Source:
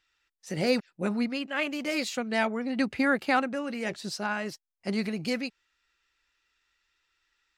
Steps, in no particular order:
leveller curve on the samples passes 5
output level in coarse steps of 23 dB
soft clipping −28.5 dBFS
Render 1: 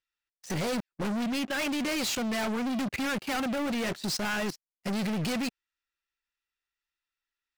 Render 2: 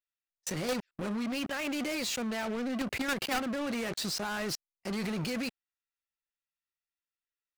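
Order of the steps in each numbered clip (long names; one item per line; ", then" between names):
leveller curve on the samples, then output level in coarse steps, then soft clipping
output level in coarse steps, then leveller curve on the samples, then soft clipping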